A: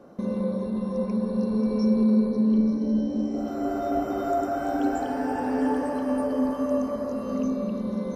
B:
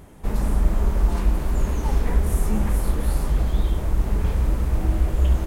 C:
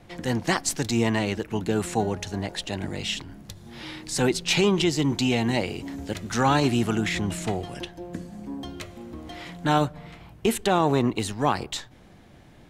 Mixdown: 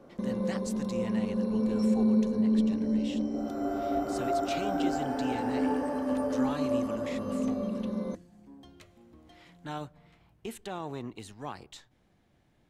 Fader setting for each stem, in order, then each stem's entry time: -4.0 dB, off, -16.5 dB; 0.00 s, off, 0.00 s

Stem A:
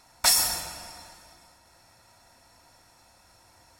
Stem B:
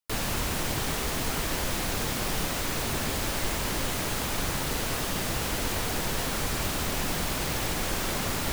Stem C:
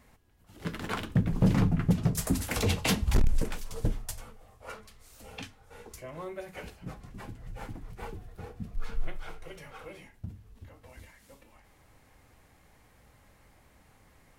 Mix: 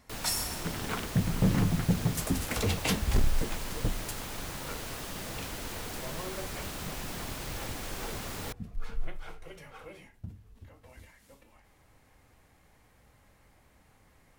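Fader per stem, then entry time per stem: -11.0, -9.5, -2.0 dB; 0.00, 0.00, 0.00 s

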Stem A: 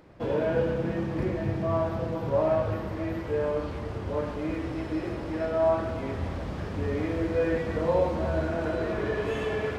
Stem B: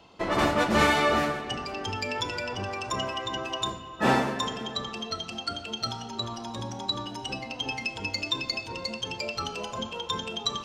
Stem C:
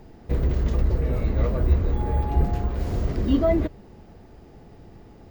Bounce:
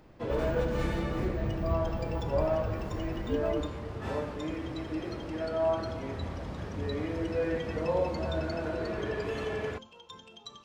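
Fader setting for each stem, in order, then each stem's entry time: -4.5, -17.5, -13.5 dB; 0.00, 0.00, 0.00 s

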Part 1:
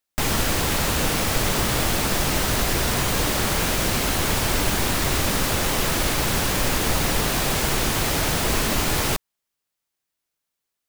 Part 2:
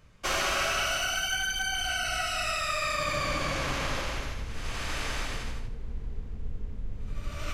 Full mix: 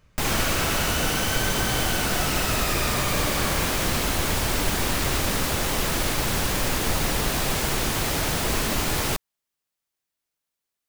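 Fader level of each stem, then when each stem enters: -2.5, -1.5 dB; 0.00, 0.00 s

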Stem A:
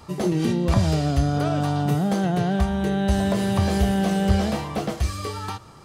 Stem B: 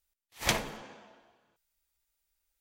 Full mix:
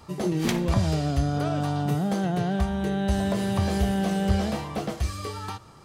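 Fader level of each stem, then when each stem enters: -3.5, -3.5 dB; 0.00, 0.00 s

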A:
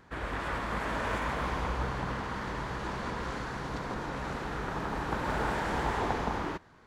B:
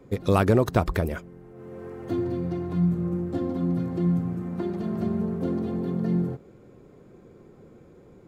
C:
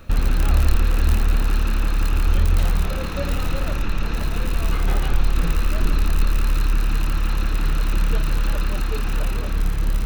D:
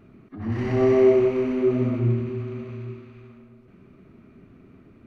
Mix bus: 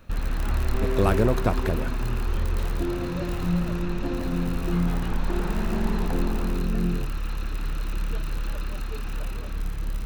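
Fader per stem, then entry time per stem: -6.5, -2.5, -8.5, -12.0 dB; 0.00, 0.70, 0.00, 0.00 s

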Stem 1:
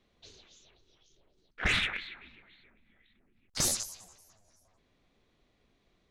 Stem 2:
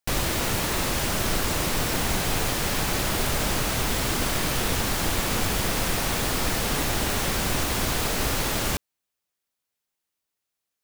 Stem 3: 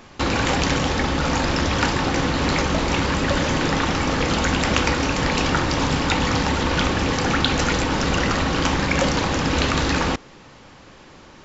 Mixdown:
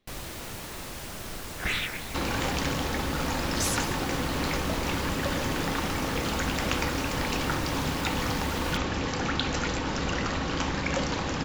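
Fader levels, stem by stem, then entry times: -1.5, -13.0, -8.5 dB; 0.00, 0.00, 1.95 s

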